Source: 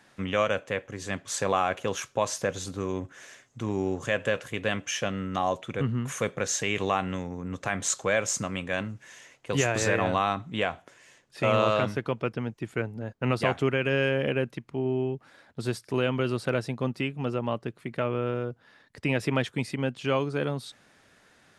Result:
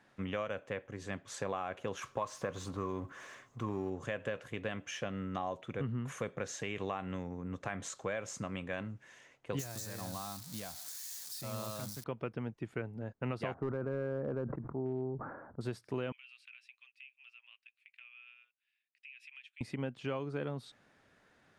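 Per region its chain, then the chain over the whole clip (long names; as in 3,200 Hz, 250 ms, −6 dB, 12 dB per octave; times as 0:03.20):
0:02.02–0:03.90: mu-law and A-law mismatch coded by mu + parametric band 1,100 Hz +10.5 dB 0.3 octaves
0:09.59–0:12.04: spike at every zero crossing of −17.5 dBFS + drawn EQ curve 200 Hz 0 dB, 430 Hz −11 dB, 790 Hz −5 dB, 2,800 Hz −10 dB, 4,200 Hz +5 dB
0:13.54–0:15.61: Butterworth low-pass 1,400 Hz + gain into a clipping stage and back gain 19.5 dB + level that may fall only so fast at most 50 dB per second
0:16.12–0:19.61: four-pole ladder high-pass 2,400 Hz, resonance 80% + downward compressor, threshold −40 dBFS + multiband upward and downward expander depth 40%
whole clip: downward compressor, threshold −26 dBFS; high-shelf EQ 3,600 Hz −10 dB; level −6 dB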